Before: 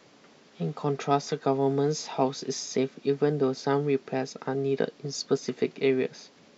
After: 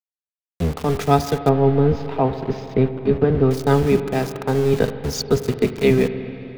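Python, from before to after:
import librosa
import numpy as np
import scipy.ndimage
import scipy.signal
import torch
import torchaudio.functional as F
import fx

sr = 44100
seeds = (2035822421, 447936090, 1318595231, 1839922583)

y = fx.octave_divider(x, sr, octaves=1, level_db=0.0)
y = np.where(np.abs(y) >= 10.0 ** (-35.0 / 20.0), y, 0.0)
y = fx.air_absorb(y, sr, metres=390.0, at=(1.49, 3.51))
y = fx.rev_spring(y, sr, rt60_s=3.5, pass_ms=(41, 46), chirp_ms=35, drr_db=10.0)
y = y * librosa.db_to_amplitude(7.5)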